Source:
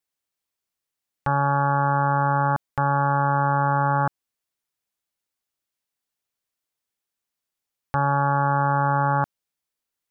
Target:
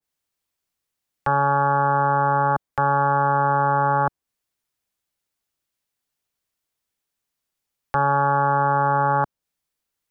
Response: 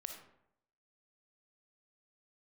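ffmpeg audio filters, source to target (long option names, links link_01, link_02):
-filter_complex "[0:a]lowshelf=frequency=160:gain=5.5,acrossover=split=280|480[link_01][link_02][link_03];[link_01]asoftclip=type=hard:threshold=-32dB[link_04];[link_04][link_02][link_03]amix=inputs=3:normalize=0,adynamicequalizer=threshold=0.0141:dfrequency=1600:dqfactor=0.7:tfrequency=1600:tqfactor=0.7:attack=5:release=100:ratio=0.375:range=2.5:mode=cutabove:tftype=highshelf,volume=3dB"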